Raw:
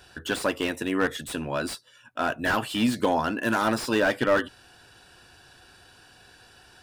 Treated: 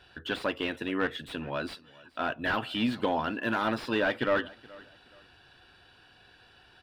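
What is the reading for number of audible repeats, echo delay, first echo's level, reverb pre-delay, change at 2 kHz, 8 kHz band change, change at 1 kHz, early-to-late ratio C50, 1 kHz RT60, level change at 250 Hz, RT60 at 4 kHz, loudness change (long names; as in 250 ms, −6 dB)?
2, 424 ms, −22.5 dB, no reverb audible, −4.0 dB, below −15 dB, −4.5 dB, no reverb audible, no reverb audible, −5.0 dB, no reverb audible, −4.5 dB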